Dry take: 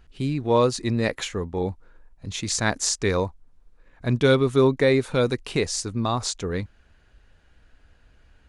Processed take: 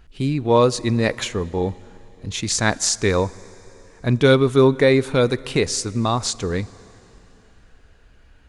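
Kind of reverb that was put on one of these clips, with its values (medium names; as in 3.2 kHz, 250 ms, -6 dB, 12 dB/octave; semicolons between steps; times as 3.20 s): plate-style reverb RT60 3.6 s, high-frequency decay 0.9×, DRR 20 dB; trim +4 dB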